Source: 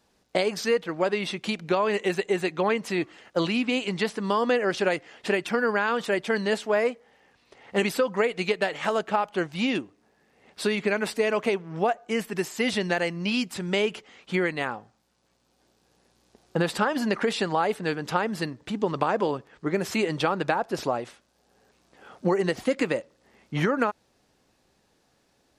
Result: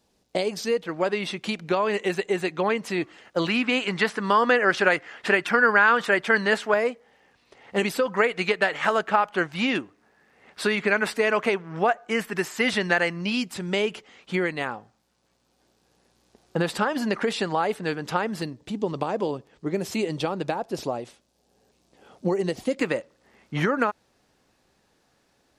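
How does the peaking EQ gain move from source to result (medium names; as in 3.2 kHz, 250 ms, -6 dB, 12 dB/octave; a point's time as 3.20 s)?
peaking EQ 1.5 kHz 1.4 oct
-6.5 dB
from 0.84 s +1 dB
from 3.48 s +10 dB
from 6.74 s +0.5 dB
from 8.06 s +7.5 dB
from 13.21 s 0 dB
from 18.42 s -8.5 dB
from 22.81 s +2.5 dB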